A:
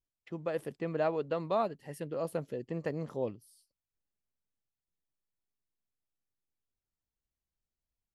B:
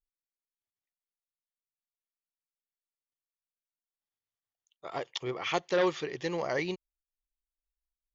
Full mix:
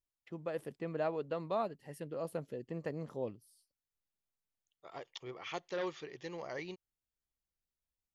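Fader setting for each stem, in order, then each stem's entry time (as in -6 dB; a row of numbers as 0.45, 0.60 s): -4.5, -11.0 dB; 0.00, 0.00 s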